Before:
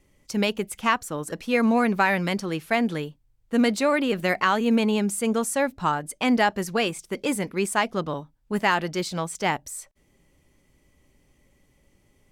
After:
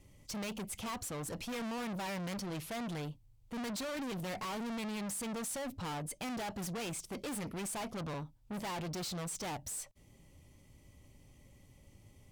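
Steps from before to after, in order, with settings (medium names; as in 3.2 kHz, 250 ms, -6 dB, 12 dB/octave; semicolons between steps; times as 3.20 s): fifteen-band graphic EQ 100 Hz +9 dB, 400 Hz -4 dB, 1.6 kHz -8 dB; valve stage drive 40 dB, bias 0.3; trim +2 dB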